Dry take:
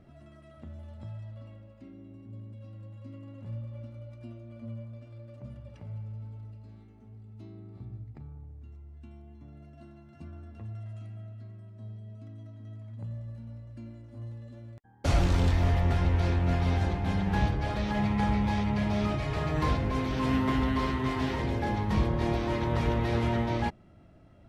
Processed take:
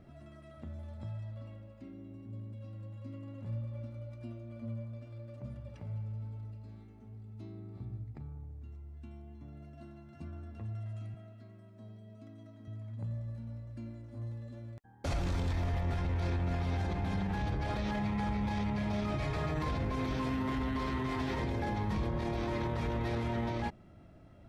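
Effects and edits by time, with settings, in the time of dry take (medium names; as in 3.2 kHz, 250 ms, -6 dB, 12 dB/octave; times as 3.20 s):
11.14–12.68 s: high-pass 180 Hz
whole clip: band-stop 2.9 kHz, Q 24; peak limiter -26 dBFS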